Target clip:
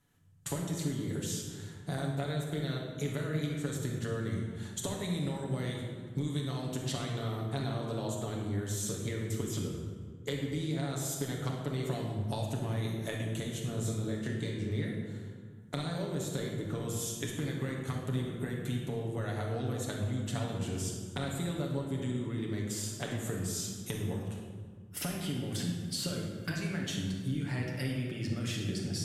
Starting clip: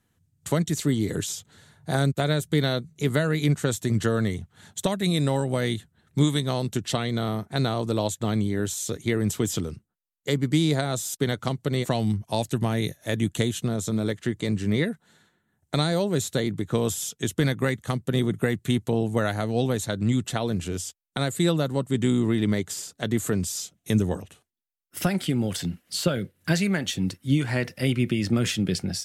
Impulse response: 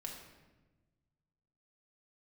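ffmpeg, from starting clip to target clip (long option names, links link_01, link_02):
-filter_complex "[0:a]asettb=1/sr,asplit=3[link_01][link_02][link_03];[link_01]atrim=end=13.744[link_04];[link_02]atrim=start=13.74:end=14.62,asetpts=PTS-STARTPTS,afade=type=in:duration=0.004:curve=qsin,afade=type=out:start_time=0.876:duration=0.004:curve=qsin,asplit=2[link_05][link_06];[link_06]adelay=28,volume=-2.5dB[link_07];[link_05][link_07]amix=inputs=2:normalize=0,atrim=end_sample=38808[link_08];[link_03]atrim=start=14.616[link_09];[link_04][link_08]acrossfade=duration=0.004:curve1=hsin:curve2=qsin[link_10];[link_10][link_09]acrossfade=duration=0.004:curve1=qsin:curve2=hsin,acompressor=threshold=-32dB:ratio=12[link_11];[1:a]atrim=start_sample=2205,asetrate=27783,aresample=44100[link_12];[link_11][link_12]afir=irnorm=-1:irlink=0"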